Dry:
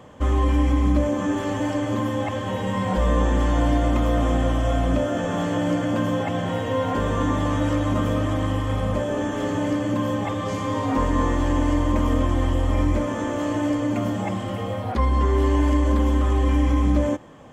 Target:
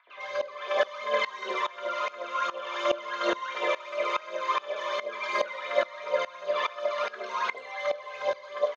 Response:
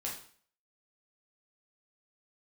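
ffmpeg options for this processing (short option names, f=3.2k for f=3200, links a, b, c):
-filter_complex "[0:a]acompressor=threshold=-22dB:ratio=6,aphaser=in_gain=1:out_gain=1:delay=2.3:decay=0.73:speed=1.4:type=triangular,highpass=f=250:w=0.5412,highpass=f=250:w=1.3066,equalizer=f=290:t=q:w=4:g=4,equalizer=f=630:t=q:w=4:g=4,equalizer=f=1.6k:t=q:w=4:g=7,lowpass=f=2.6k:w=0.5412,lowpass=f=2.6k:w=1.3066,acrossover=split=510|1800[a][b][c];[a]adelay=140[d];[c]adelay=200[e];[d][b][e]amix=inputs=3:normalize=0,asplit=2[f][g];[1:a]atrim=start_sample=2205,adelay=6[h];[g][h]afir=irnorm=-1:irlink=0,volume=-4dB[i];[f][i]amix=inputs=2:normalize=0,asetrate=88200,aresample=44100,aeval=exprs='val(0)*pow(10,-20*if(lt(mod(-2.4*n/s,1),2*abs(-2.4)/1000),1-mod(-2.4*n/s,1)/(2*abs(-2.4)/1000),(mod(-2.4*n/s,1)-2*abs(-2.4)/1000)/(1-2*abs(-2.4)/1000))/20)':c=same"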